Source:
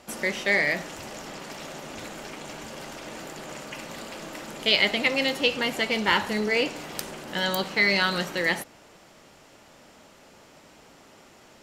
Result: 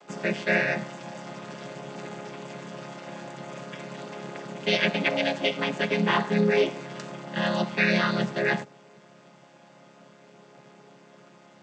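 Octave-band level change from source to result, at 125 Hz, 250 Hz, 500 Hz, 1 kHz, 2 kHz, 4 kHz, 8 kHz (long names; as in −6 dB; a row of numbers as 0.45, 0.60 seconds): +7.0, +3.5, +2.0, 0.0, −2.5, −5.5, −8.0 decibels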